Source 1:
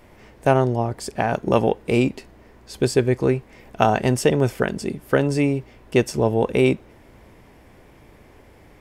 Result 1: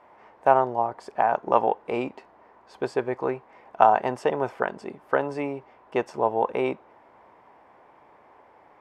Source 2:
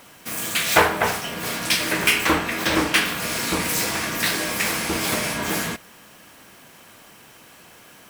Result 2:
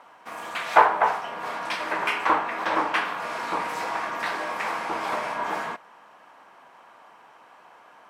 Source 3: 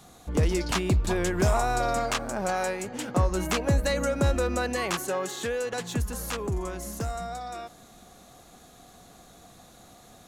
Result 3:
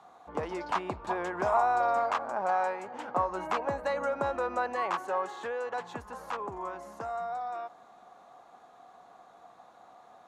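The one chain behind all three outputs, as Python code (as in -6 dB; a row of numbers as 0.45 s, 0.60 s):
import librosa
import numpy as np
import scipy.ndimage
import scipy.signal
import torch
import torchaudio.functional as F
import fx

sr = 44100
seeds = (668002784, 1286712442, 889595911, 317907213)

y = fx.bandpass_q(x, sr, hz=930.0, q=2.2)
y = F.gain(torch.from_numpy(y), 5.0).numpy()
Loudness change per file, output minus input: -4.0 LU, -4.5 LU, -4.0 LU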